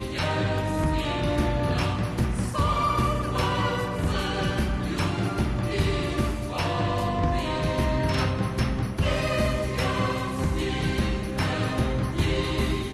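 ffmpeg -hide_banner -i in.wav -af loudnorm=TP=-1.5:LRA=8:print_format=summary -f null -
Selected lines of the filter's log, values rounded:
Input Integrated:    -26.2 LUFS
Input True Peak:     -11.2 dBTP
Input LRA:             0.8 LU
Input Threshold:     -36.2 LUFS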